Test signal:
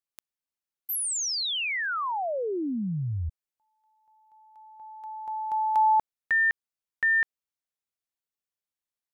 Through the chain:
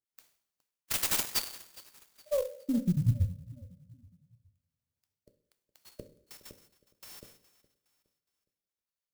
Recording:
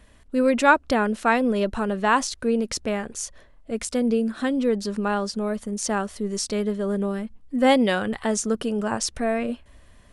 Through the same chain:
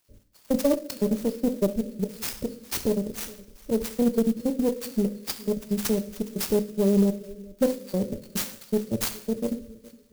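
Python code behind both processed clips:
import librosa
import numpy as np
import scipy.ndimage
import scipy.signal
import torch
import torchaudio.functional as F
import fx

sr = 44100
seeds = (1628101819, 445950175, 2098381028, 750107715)

p1 = fx.spec_dropout(x, sr, seeds[0], share_pct=63)
p2 = fx.peak_eq(p1, sr, hz=86.0, db=2.5, octaves=2.7)
p3 = np.clip(10.0 ** (24.5 / 20.0) * p2, -1.0, 1.0) / 10.0 ** (24.5 / 20.0)
p4 = p2 + (p3 * librosa.db_to_amplitude(-7.5))
p5 = fx.brickwall_bandstop(p4, sr, low_hz=610.0, high_hz=4200.0)
p6 = p5 + fx.echo_feedback(p5, sr, ms=415, feedback_pct=41, wet_db=-21.0, dry=0)
p7 = fx.rev_double_slope(p6, sr, seeds[1], early_s=0.58, late_s=2.3, knee_db=-25, drr_db=5.5)
p8 = fx.cheby_harmonics(p7, sr, harmonics=(6, 8), levels_db=(-22, -33), full_scale_db=-8.5)
y = fx.clock_jitter(p8, sr, seeds[2], jitter_ms=0.042)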